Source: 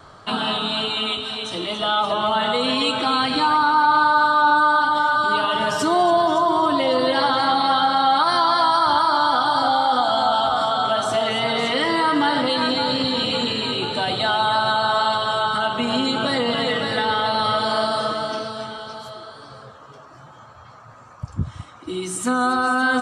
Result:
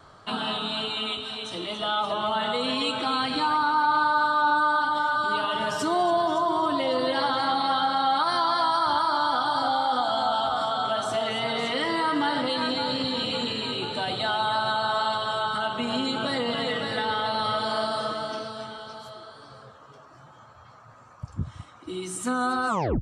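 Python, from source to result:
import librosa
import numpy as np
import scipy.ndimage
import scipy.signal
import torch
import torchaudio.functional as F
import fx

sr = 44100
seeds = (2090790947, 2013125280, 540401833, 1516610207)

y = fx.tape_stop_end(x, sr, length_s=0.33)
y = y * librosa.db_to_amplitude(-6.0)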